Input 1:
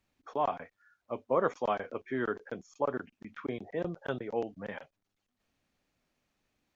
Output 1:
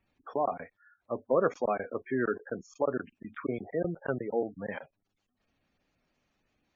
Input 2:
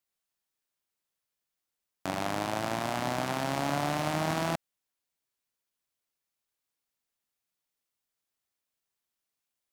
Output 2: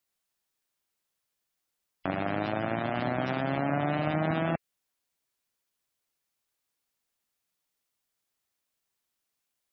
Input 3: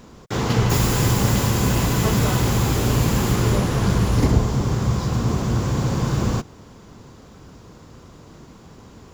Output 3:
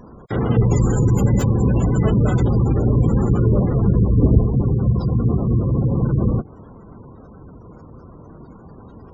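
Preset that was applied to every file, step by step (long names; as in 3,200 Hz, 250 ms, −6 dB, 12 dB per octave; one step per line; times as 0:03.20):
gate on every frequency bin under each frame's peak −20 dB strong
dynamic equaliser 970 Hz, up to −8 dB, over −45 dBFS, Q 2.5
level +3.5 dB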